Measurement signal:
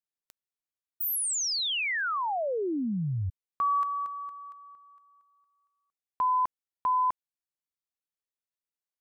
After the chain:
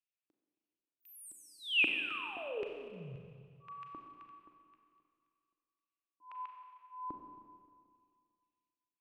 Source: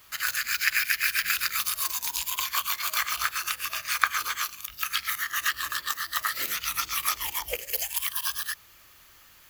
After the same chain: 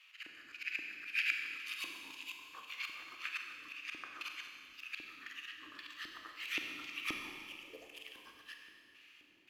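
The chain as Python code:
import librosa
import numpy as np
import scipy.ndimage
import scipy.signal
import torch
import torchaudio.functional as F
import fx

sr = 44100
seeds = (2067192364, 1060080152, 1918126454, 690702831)

y = fx.filter_lfo_bandpass(x, sr, shape='square', hz=1.9, low_hz=310.0, high_hz=2600.0, q=5.7)
y = fx.auto_swell(y, sr, attack_ms=225.0)
y = fx.rev_schroeder(y, sr, rt60_s=2.1, comb_ms=30, drr_db=2.5)
y = y * 10.0 ** (4.0 / 20.0)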